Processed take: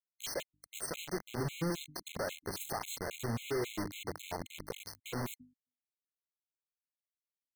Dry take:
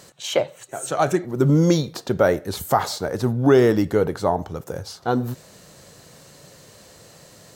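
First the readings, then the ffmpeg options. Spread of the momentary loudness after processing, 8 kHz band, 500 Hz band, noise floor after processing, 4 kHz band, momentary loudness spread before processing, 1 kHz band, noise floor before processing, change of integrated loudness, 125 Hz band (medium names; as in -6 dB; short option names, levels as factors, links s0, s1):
9 LU, -9.5 dB, -20.5 dB, under -85 dBFS, -11.5 dB, 15 LU, -18.5 dB, -49 dBFS, -18.5 dB, -19.0 dB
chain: -filter_complex "[0:a]acompressor=threshold=0.0631:ratio=5,bandreject=f=3800:w=11,asplit=2[s0][s1];[s1]adelay=845,lowpass=f=3700:p=1,volume=0.1,asplit=2[s2][s3];[s3]adelay=845,lowpass=f=3700:p=1,volume=0.53,asplit=2[s4][s5];[s5]adelay=845,lowpass=f=3700:p=1,volume=0.53,asplit=2[s6][s7];[s7]adelay=845,lowpass=f=3700:p=1,volume=0.53[s8];[s2][s4][s6][s8]amix=inputs=4:normalize=0[s9];[s0][s9]amix=inputs=2:normalize=0,alimiter=limit=0.0944:level=0:latency=1:release=53,acrusher=bits=4:mix=0:aa=0.000001,bandreject=f=50:t=h:w=6,bandreject=f=100:t=h:w=6,bandreject=f=150:t=h:w=6,bandreject=f=200:t=h:w=6,bandreject=f=250:t=h:w=6,bandreject=f=300:t=h:w=6,afftfilt=real='re*gt(sin(2*PI*3.7*pts/sr)*(1-2*mod(floor(b*sr/1024/2100),2)),0)':imag='im*gt(sin(2*PI*3.7*pts/sr)*(1-2*mod(floor(b*sr/1024/2100),2)),0)':win_size=1024:overlap=0.75,volume=0.501"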